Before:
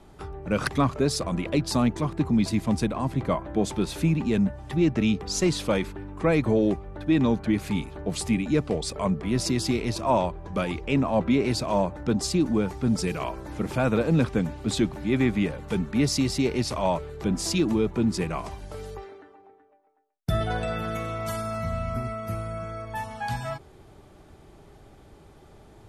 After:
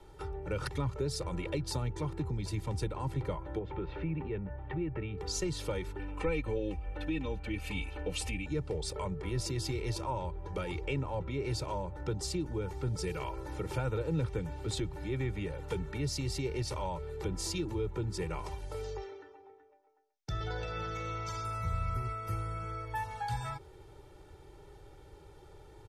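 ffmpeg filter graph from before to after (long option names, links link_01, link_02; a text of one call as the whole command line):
ffmpeg -i in.wav -filter_complex "[0:a]asettb=1/sr,asplit=3[link_01][link_02][link_03];[link_01]atrim=end=3.594[link_04];[link_02]atrim=start=3.59:end=5.18,asetpts=PTS-STARTPTS,afade=type=in:duration=0.004:curve=qsin,afade=type=out:start_time=1.586:duration=0.004:curve=qsin,lowpass=frequency=2500:width=0.5412,lowpass=frequency=2500:width=1.3066,acompressor=threshold=-28dB:ratio=1.5:attack=3.2:release=140:knee=1:detection=peak[link_05];[link_03]atrim=start=5.176[link_06];[link_04][link_05]acrossfade=duration=0.004:curve1=hsin:curve2=qsin[link_07];[link_07][link_06]acrossfade=duration=0.004:curve1=qsin:curve2=hsin,asettb=1/sr,asplit=3[link_08][link_09][link_10];[link_08]atrim=end=5.994[link_11];[link_09]atrim=start=5.99:end=8.46,asetpts=PTS-STARTPTS,afade=type=in:duration=0.004:curve=qsin,afade=type=out:start_time=2.466:duration=0.004:curve=qsin,equalizer=frequency=2600:width=2.6:gain=11.5,aecho=1:1:3.9:0.78,atrim=end_sample=108927[link_12];[link_10]atrim=start=8.456[link_13];[link_11][link_12]acrossfade=duration=0.004:curve1=hsin:curve2=qsin[link_14];[link_14][link_13]acrossfade=duration=0.004:curve1=qsin:curve2=hsin,asettb=1/sr,asplit=3[link_15][link_16][link_17];[link_15]atrim=end=18.844[link_18];[link_16]atrim=start=18.84:end=21.45,asetpts=PTS-STARTPTS,afade=type=in:duration=0.004:curve=qsin,afade=type=out:start_time=2.606:duration=0.004:curve=qsin,highshelf=frequency=7800:width_type=q:width=3:gain=-11,acompressor=threshold=-29dB:ratio=3:attack=3.2:release=140:knee=1:detection=peak[link_19];[link_17]atrim=start=21.446[link_20];[link_18][link_19]acrossfade=duration=0.004:curve1=hsin:curve2=qsin[link_21];[link_21][link_20]acrossfade=duration=0.004:curve1=qsin:curve2=hsin,acrossover=split=170[link_22][link_23];[link_23]acompressor=threshold=-30dB:ratio=6[link_24];[link_22][link_24]amix=inputs=2:normalize=0,aecho=1:1:2.2:0.85,volume=-6dB" out.wav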